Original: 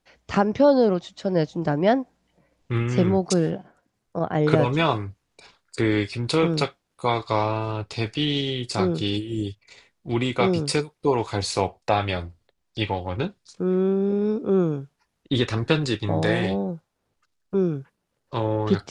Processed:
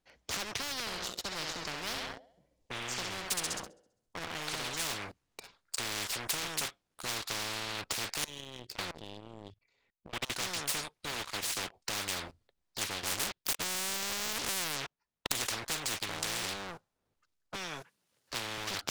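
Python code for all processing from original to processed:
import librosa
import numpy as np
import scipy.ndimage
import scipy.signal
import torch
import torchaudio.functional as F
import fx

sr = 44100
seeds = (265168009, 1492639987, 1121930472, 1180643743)

y = fx.chain(x, sr, fx.peak_eq(hz=1600.0, db=-12.0, octaves=1.9),
    fx.echo_thinned(ms=66, feedback_pct=55, hz=350.0, wet_db=-7), at=(0.8, 4.74))
y = fx.chain(y, sr, fx.lowpass(hz=9000.0, slope=12),
    fx.high_shelf(hz=4300.0, db=-8.5),
    fx.level_steps(step_db=23), at=(8.24, 10.3))
y = fx.chain(y, sr, fx.highpass(hz=240.0, slope=12),
    fx.peak_eq(hz=320.0, db=7.0, octaves=1.5),
    fx.upward_expand(threshold_db=-33.0, expansion=1.5), at=(11.12, 11.74))
y = fx.chain(y, sr, fx.env_lowpass_down(base_hz=950.0, full_db=-16.5),
    fx.low_shelf(hz=140.0, db=-2.0),
    fx.leveller(passes=5), at=(13.03, 15.32))
y = fx.chain(y, sr, fx.highpass(hz=83.0, slope=12),
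    fx.tilt_shelf(db=-4.0, hz=1300.0),
    fx.band_squash(depth_pct=40), at=(17.55, 18.58))
y = fx.dynamic_eq(y, sr, hz=3100.0, q=1.8, threshold_db=-44.0, ratio=4.0, max_db=5)
y = fx.leveller(y, sr, passes=3)
y = fx.spectral_comp(y, sr, ratio=10.0)
y = y * 10.0 ** (-9.0 / 20.0)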